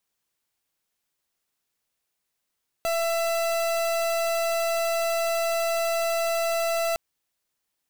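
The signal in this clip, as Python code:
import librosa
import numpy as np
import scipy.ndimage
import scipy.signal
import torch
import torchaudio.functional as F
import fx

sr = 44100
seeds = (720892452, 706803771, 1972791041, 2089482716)

y = fx.pulse(sr, length_s=4.11, hz=668.0, level_db=-25.0, duty_pct=39)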